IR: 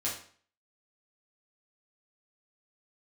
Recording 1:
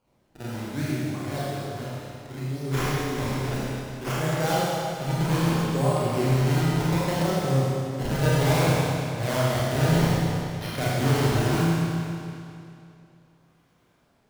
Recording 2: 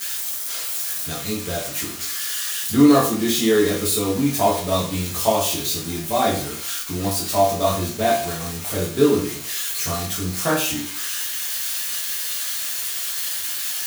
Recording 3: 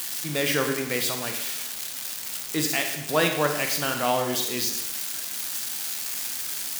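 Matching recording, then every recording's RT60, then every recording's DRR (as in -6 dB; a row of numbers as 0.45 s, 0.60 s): 2; 2.6 s, 0.50 s, 0.85 s; -8.5 dB, -6.5 dB, 4.0 dB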